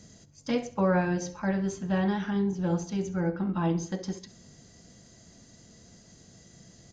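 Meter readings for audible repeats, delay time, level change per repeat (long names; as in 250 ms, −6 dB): 3, 66 ms, −7.5 dB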